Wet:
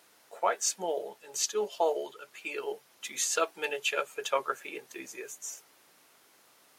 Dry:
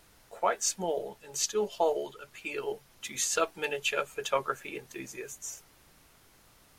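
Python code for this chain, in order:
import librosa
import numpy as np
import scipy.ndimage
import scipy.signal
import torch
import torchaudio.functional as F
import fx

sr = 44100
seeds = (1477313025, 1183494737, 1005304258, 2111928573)

y = scipy.signal.sosfilt(scipy.signal.butter(2, 320.0, 'highpass', fs=sr, output='sos'), x)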